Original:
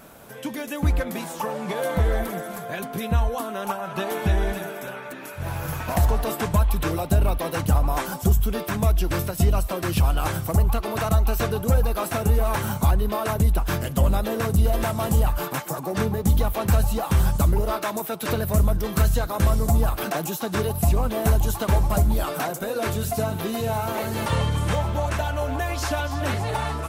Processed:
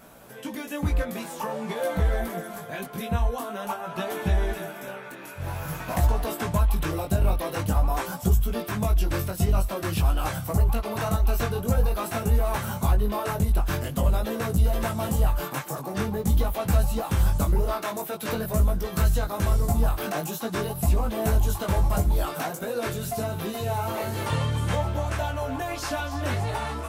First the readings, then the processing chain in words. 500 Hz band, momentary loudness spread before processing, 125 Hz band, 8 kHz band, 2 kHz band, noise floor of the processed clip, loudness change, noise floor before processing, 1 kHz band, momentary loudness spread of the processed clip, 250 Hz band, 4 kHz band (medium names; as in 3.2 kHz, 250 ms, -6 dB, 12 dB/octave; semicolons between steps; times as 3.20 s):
-3.0 dB, 7 LU, -3.0 dB, -3.0 dB, -3.0 dB, -39 dBFS, -2.5 dB, -35 dBFS, -3.0 dB, 8 LU, -3.0 dB, -3.0 dB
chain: chorus 0.48 Hz, delay 16.5 ms, depth 4.8 ms